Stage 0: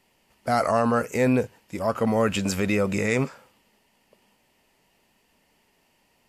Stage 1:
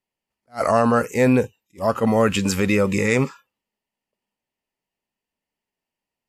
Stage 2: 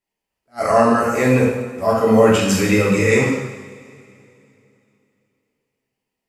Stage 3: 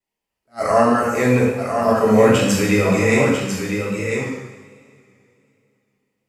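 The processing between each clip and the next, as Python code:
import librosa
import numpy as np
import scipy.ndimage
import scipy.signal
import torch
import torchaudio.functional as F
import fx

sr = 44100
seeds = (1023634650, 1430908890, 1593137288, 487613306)

y1 = fx.noise_reduce_blind(x, sr, reduce_db=26)
y1 = fx.attack_slew(y1, sr, db_per_s=330.0)
y1 = F.gain(torch.from_numpy(y1), 4.5).numpy()
y2 = fx.rev_double_slope(y1, sr, seeds[0], early_s=0.93, late_s=3.0, knee_db=-18, drr_db=-5.5)
y2 = F.gain(torch.from_numpy(y2), -2.5).numpy()
y3 = y2 + 10.0 ** (-6.5 / 20.0) * np.pad(y2, (int(1000 * sr / 1000.0), 0))[:len(y2)]
y3 = fx.vibrato(y3, sr, rate_hz=1.3, depth_cents=39.0)
y3 = F.gain(torch.from_numpy(y3), -1.0).numpy()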